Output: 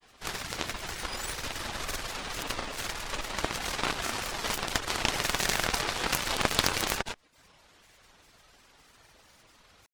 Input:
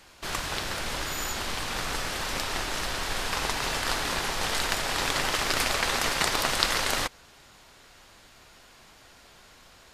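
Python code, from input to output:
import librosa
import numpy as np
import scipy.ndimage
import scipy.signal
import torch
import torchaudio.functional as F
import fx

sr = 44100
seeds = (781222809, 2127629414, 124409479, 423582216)

y = fx.dereverb_blind(x, sr, rt60_s=0.55)
y = fx.cheby_harmonics(y, sr, harmonics=(8,), levels_db=(-10,), full_scale_db=-1.0)
y = fx.granulator(y, sr, seeds[0], grain_ms=100.0, per_s=20.0, spray_ms=100.0, spread_st=7)
y = y * librosa.db_to_amplitude(-2.5)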